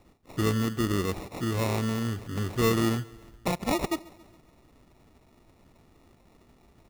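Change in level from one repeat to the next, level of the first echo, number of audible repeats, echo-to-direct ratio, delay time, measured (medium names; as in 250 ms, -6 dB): -5.0 dB, -22.0 dB, 3, -20.5 dB, 138 ms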